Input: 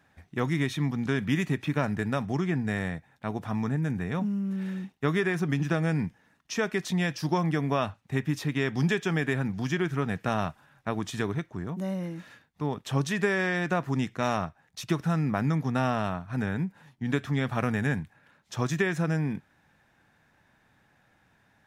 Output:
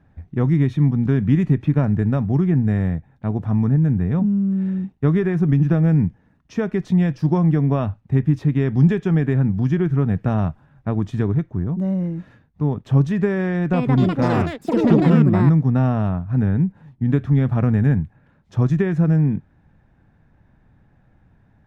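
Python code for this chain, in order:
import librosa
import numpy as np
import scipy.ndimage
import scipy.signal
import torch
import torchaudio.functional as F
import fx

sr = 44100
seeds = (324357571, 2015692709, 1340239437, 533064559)

y = fx.tilt_eq(x, sr, slope=-4.5)
y = fx.echo_pitch(y, sr, ms=243, semitones=6, count=3, db_per_echo=-3.0, at=(13.49, 15.98))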